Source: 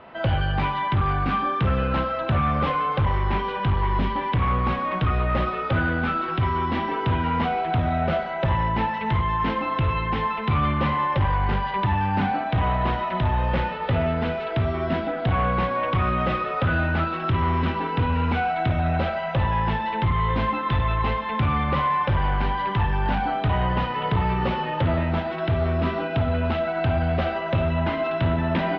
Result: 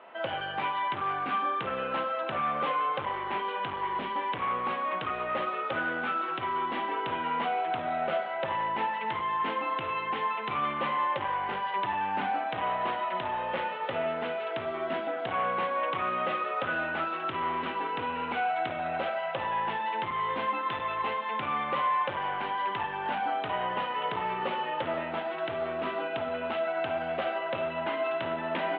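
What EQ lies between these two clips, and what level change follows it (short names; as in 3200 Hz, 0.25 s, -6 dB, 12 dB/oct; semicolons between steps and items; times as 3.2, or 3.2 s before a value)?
HPF 420 Hz 12 dB/oct; Chebyshev low-pass 3300 Hz, order 3; -3.5 dB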